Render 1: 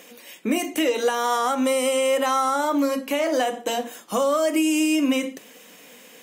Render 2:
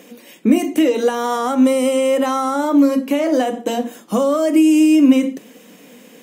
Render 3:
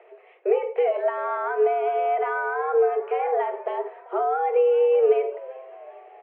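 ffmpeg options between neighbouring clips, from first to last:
-af "equalizer=f=220:w=0.56:g=12.5,volume=0.891"
-filter_complex "[0:a]asplit=5[s0][s1][s2][s3][s4];[s1]adelay=390,afreqshift=88,volume=0.0891[s5];[s2]adelay=780,afreqshift=176,volume=0.0479[s6];[s3]adelay=1170,afreqshift=264,volume=0.026[s7];[s4]adelay=1560,afreqshift=352,volume=0.014[s8];[s0][s5][s6][s7][s8]amix=inputs=5:normalize=0,highpass=f=210:t=q:w=0.5412,highpass=f=210:t=q:w=1.307,lowpass=f=2200:t=q:w=0.5176,lowpass=f=2200:t=q:w=0.7071,lowpass=f=2200:t=q:w=1.932,afreqshift=170,volume=0.447"

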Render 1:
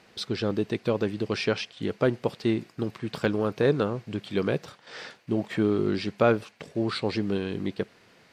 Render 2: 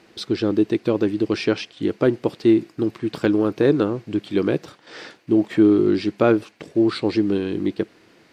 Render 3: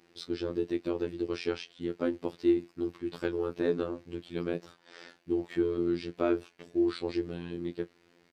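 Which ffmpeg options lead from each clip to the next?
-af "equalizer=f=320:t=o:w=0.45:g=11.5,volume=1.26"
-filter_complex "[0:a]asplit=2[s0][s1];[s1]adelay=26,volume=0.2[s2];[s0][s2]amix=inputs=2:normalize=0,afftfilt=real='hypot(re,im)*cos(PI*b)':imag='0':win_size=2048:overlap=0.75,volume=0.376"

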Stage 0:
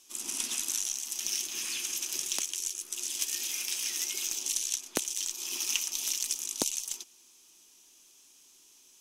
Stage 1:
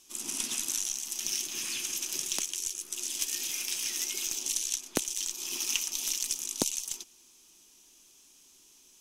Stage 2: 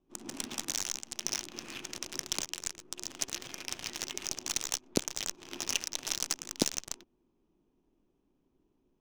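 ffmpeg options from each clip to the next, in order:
-af "lowshelf=f=230:g=9"
-filter_complex "[0:a]acrossover=split=600|3000[s0][s1][s2];[s1]asoftclip=type=tanh:threshold=0.0168[s3];[s0][s3][s2]amix=inputs=3:normalize=0,adynamicsmooth=sensitivity=6:basefreq=500,volume=1.41"

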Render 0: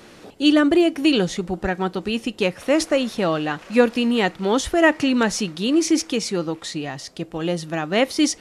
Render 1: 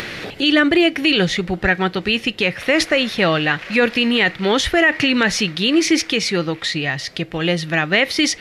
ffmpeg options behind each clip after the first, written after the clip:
-af "equalizer=f=125:t=o:w=1:g=5,equalizer=f=250:t=o:w=1:g=-4,equalizer=f=1000:t=o:w=1:g=-4,equalizer=f=2000:t=o:w=1:g=11,equalizer=f=4000:t=o:w=1:g=5,equalizer=f=8000:t=o:w=1:g=-7,acompressor=mode=upward:threshold=0.0562:ratio=2.5,alimiter=level_in=2.82:limit=0.891:release=50:level=0:latency=1,volume=0.596"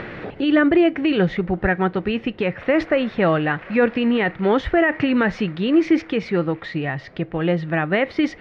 -af "lowpass=1400"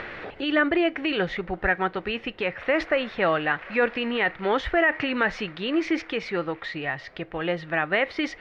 -af "equalizer=f=160:t=o:w=2.8:g=-13"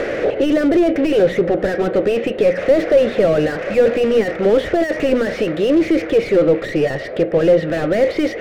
-filter_complex "[0:a]asplit=2[s0][s1];[s1]highpass=f=720:p=1,volume=50.1,asoftclip=type=tanh:threshold=0.335[s2];[s0][s2]amix=inputs=2:normalize=0,lowpass=f=1600:p=1,volume=0.501,lowshelf=f=710:t=q:w=3:g=9,bandreject=f=60:t=h:w=6,bandreject=f=120:t=h:w=6,bandreject=f=180:t=h:w=6,bandreject=f=240:t=h:w=6,volume=0.447"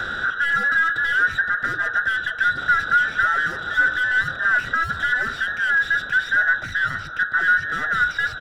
-filter_complex "[0:a]afftfilt=real='real(if(between(b,1,1012),(2*floor((b-1)/92)+1)*92-b,b),0)':imag='imag(if(between(b,1,1012),(2*floor((b-1)/92)+1)*92-b,b),0)*if(between(b,1,1012),-1,1)':win_size=2048:overlap=0.75,acrossover=split=290|370|1200[s0][s1][s2][s3];[s1]acompressor=threshold=0.002:ratio=6[s4];[s2]aecho=1:1:473:0.398[s5];[s0][s4][s5][s3]amix=inputs=4:normalize=0,volume=0.531"

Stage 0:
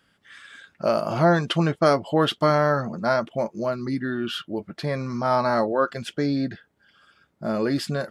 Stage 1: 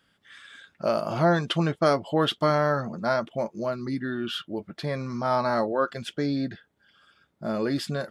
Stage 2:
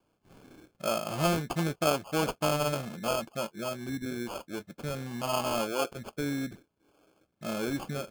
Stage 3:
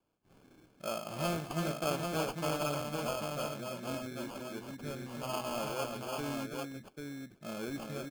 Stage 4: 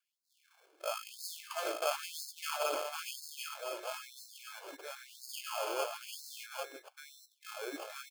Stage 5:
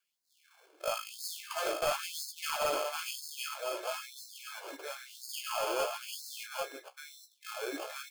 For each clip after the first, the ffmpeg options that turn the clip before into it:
-af "equalizer=f=3500:t=o:w=0.24:g=4,volume=0.708"
-af "acrusher=samples=23:mix=1:aa=0.000001,volume=0.531"
-af "aecho=1:1:111|330|793:0.158|0.562|0.631,volume=0.422"
-af "afftfilt=real='re*gte(b*sr/1024,300*pow(3800/300,0.5+0.5*sin(2*PI*1*pts/sr)))':imag='im*gte(b*sr/1024,300*pow(3800/300,0.5+0.5*sin(2*PI*1*pts/sr)))':win_size=1024:overlap=0.75,volume=1.19"
-af "flanger=delay=10:depth=8.7:regen=-43:speed=0.48:shape=triangular,aeval=exprs='0.0596*(cos(1*acos(clip(val(0)/0.0596,-1,1)))-cos(1*PI/2))+0.00422*(cos(2*acos(clip(val(0)/0.0596,-1,1)))-cos(2*PI/2))+0.0133*(cos(5*acos(clip(val(0)/0.0596,-1,1)))-cos(5*PI/2))+0.00422*(cos(7*acos(clip(val(0)/0.0596,-1,1)))-cos(7*PI/2))':c=same,volume=1.5"

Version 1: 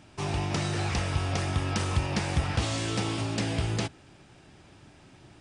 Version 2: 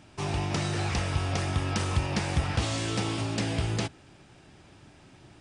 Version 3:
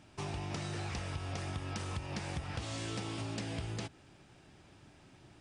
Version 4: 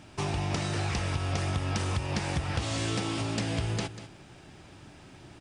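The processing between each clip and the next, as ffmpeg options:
-af anull
-af "acompressor=threshold=0.0316:ratio=6,volume=0.531"
-af "aecho=1:1:192:0.224,volume=2.66"

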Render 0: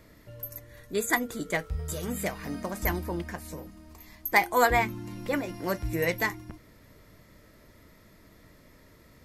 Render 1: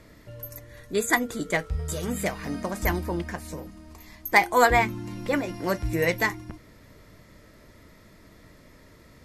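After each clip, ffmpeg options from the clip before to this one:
-af "lowpass=11000,volume=1.5"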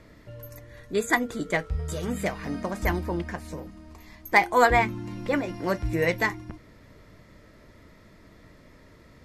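-af "highshelf=f=6800:g=-10"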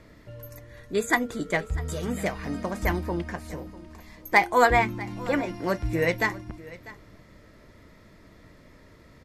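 -af "aecho=1:1:646:0.112"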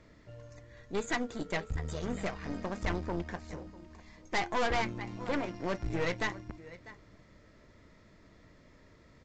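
-af "aeval=exprs='(tanh(17.8*val(0)+0.8)-tanh(0.8))/17.8':c=same,volume=0.794" -ar 16000 -c:a pcm_mulaw

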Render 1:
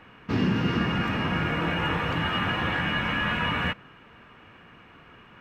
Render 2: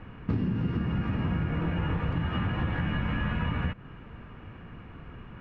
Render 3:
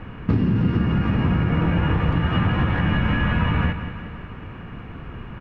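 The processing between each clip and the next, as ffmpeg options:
-af "aemphasis=mode=reproduction:type=riaa,acompressor=threshold=0.0562:ratio=10"
-af "aecho=1:1:182|364|546|728|910|1092|1274:0.299|0.17|0.097|0.0553|0.0315|0.018|0.0102,volume=2.66"

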